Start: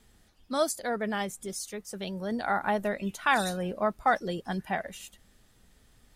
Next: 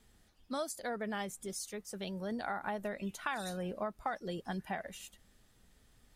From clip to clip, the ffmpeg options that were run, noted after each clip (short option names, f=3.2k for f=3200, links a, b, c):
-af "acompressor=threshold=-29dB:ratio=6,volume=-4.5dB"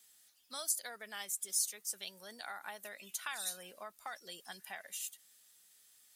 -af "aderivative,volume=9dB"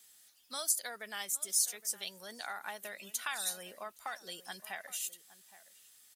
-filter_complex "[0:a]asplit=2[a][b];[b]adelay=816.3,volume=-16dB,highshelf=f=4k:g=-18.4[c];[a][c]amix=inputs=2:normalize=0,volume=3.5dB"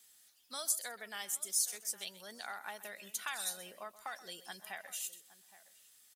-af "aecho=1:1:128:0.15,volume=-2.5dB"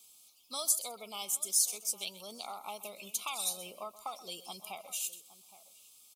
-af "asuperstop=centerf=1700:order=12:qfactor=1.9,volume=4.5dB"